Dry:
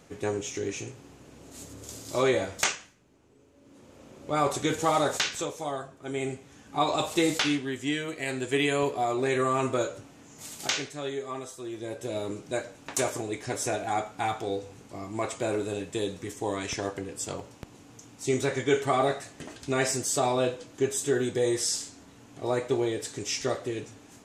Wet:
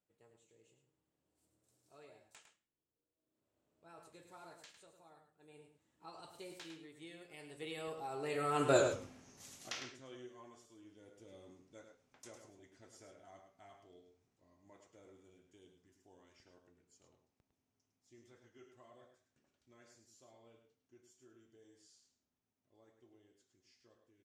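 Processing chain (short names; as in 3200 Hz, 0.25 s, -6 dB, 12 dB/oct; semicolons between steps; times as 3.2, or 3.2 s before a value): Doppler pass-by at 8.83, 37 m/s, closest 4.1 m; outdoor echo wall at 18 m, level -7 dB; gain +1 dB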